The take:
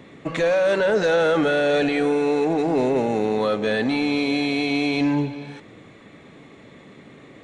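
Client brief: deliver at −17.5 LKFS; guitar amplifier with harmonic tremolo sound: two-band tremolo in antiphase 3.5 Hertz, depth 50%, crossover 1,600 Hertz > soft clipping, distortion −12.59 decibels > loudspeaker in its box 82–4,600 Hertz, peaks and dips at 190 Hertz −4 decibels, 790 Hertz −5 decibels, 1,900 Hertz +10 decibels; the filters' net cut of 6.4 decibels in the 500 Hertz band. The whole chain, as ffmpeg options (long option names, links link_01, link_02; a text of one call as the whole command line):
ffmpeg -i in.wav -filter_complex "[0:a]equalizer=frequency=500:width_type=o:gain=-7,acrossover=split=1600[link_01][link_02];[link_01]aeval=exprs='val(0)*(1-0.5/2+0.5/2*cos(2*PI*3.5*n/s))':channel_layout=same[link_03];[link_02]aeval=exprs='val(0)*(1-0.5/2-0.5/2*cos(2*PI*3.5*n/s))':channel_layout=same[link_04];[link_03][link_04]amix=inputs=2:normalize=0,asoftclip=threshold=-24.5dB,highpass=82,equalizer=frequency=190:width_type=q:width=4:gain=-4,equalizer=frequency=790:width_type=q:width=4:gain=-5,equalizer=frequency=1900:width_type=q:width=4:gain=10,lowpass=frequency=4600:width=0.5412,lowpass=frequency=4600:width=1.3066,volume=11.5dB" out.wav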